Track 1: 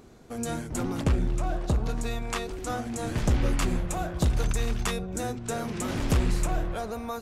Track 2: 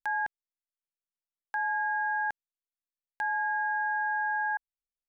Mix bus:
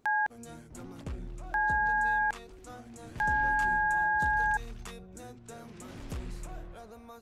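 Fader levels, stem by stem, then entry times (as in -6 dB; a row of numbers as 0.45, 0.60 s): -15.0, +2.0 dB; 0.00, 0.00 s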